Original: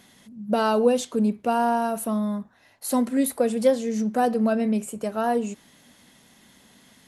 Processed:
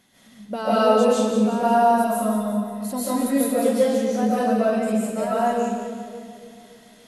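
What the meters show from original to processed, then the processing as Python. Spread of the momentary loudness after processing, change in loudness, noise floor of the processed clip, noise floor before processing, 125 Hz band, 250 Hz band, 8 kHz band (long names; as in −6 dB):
12 LU, +3.0 dB, −51 dBFS, −57 dBFS, can't be measured, +2.0 dB, +2.0 dB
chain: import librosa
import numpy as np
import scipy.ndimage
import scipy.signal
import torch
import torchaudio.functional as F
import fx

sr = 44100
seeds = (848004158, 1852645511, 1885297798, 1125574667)

p1 = x + fx.echo_split(x, sr, split_hz=660.0, low_ms=285, high_ms=178, feedback_pct=52, wet_db=-8.0, dry=0)
p2 = fx.rev_freeverb(p1, sr, rt60_s=0.83, hf_ratio=0.9, predelay_ms=105, drr_db=-9.0)
y = p2 * 10.0 ** (-7.0 / 20.0)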